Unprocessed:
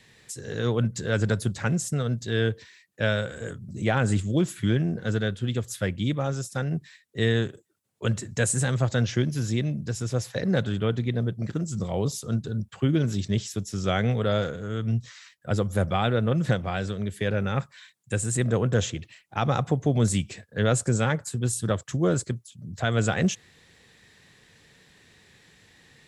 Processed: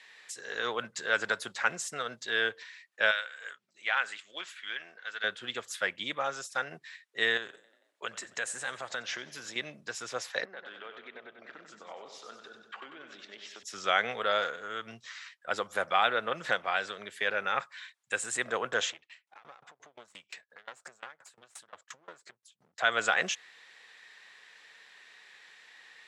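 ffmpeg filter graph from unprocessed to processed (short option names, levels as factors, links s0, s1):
-filter_complex "[0:a]asettb=1/sr,asplit=3[s0][s1][s2];[s0]atrim=end=3.114[s3];[s1]atrim=start=3.11:end=5.24,asetpts=PTS-STARTPTS,afade=t=in:d=0.004:c=qsin,afade=t=out:st=2.126:d=0.004:c=qsin,bandpass=f=2700:t=q:w=0.77,tremolo=f=2.3:d=0.37[s4];[s2]atrim=start=5.236[s5];[s3][s4]acrossfade=d=0.004:c1=hsin:c2=qsin[s6];[s6][s5]acrossfade=d=0.004:c1=qsin:c2=hsin,asettb=1/sr,asplit=3[s7][s8][s9];[s7]atrim=end=7.374[s10];[s8]atrim=start=7.37:end=9.56,asetpts=PTS-STARTPTS,afade=t=in:d=0.004:c=qsin,afade=t=out:st=2.186:d=0.004:c=qsin,acompressor=threshold=0.0398:ratio=4:attack=3.2:release=140:knee=1:detection=peak,asplit=6[s11][s12][s13][s14][s15][s16];[s12]adelay=90,afreqshift=37,volume=0.1[s17];[s13]adelay=180,afreqshift=74,volume=0.0603[s18];[s14]adelay=270,afreqshift=111,volume=0.0359[s19];[s15]adelay=360,afreqshift=148,volume=0.0216[s20];[s16]adelay=450,afreqshift=185,volume=0.013[s21];[s11][s17][s18][s19][s20][s21]amix=inputs=6:normalize=0,atrim=end_sample=96579[s22];[s9]atrim=start=9.556[s23];[s10][s22]acrossfade=d=0.004:c1=hsin:c2=qsin[s24];[s24][s23]acrossfade=d=0.004:c1=qsin:c2=hsin,asettb=1/sr,asplit=3[s25][s26][s27];[s25]atrim=end=10.454[s28];[s26]atrim=start=10.45:end=13.63,asetpts=PTS-STARTPTS,afade=t=in:d=0.004:c=qsin,afade=t=out:st=3.176:d=0.004:c=qsin,highpass=250,lowpass=3100,acompressor=threshold=0.0126:ratio=5:attack=3.2:release=140:knee=1:detection=peak,aecho=1:1:95|190|285|380|475|570|665:0.447|0.255|0.145|0.0827|0.0472|0.0269|0.0153,atrim=end_sample=140238[s29];[s27]atrim=start=13.626[s30];[s28][s29]acrossfade=d=0.004:c1=hsin:c2=qsin[s31];[s31][s30]acrossfade=d=0.004:c1=qsin:c2=hsin,asettb=1/sr,asplit=3[s32][s33][s34];[s32]atrim=end=18.924[s35];[s33]atrim=start=18.92:end=22.79,asetpts=PTS-STARTPTS,afade=t=in:d=0.004:c=qsin,afade=t=out:st=3.866:d=0.004:c=qsin,acompressor=threshold=0.0251:ratio=5:attack=3.2:release=140:knee=1:detection=peak,aeval=exprs='clip(val(0),-1,0.0133)':c=same,aeval=exprs='val(0)*pow(10,-26*if(lt(mod(5.7*n/s,1),2*abs(5.7)/1000),1-mod(5.7*n/s,1)/(2*abs(5.7)/1000),(mod(5.7*n/s,1)-2*abs(5.7)/1000)/(1-2*abs(5.7)/1000))/20)':c=same[s36];[s34]atrim=start=22.786[s37];[s35][s36]acrossfade=d=0.004:c1=hsin:c2=qsin[s38];[s38][s37]acrossfade=d=0.004:c1=qsin:c2=hsin,highpass=1100,aemphasis=mode=reproduction:type=75fm,volume=2.11"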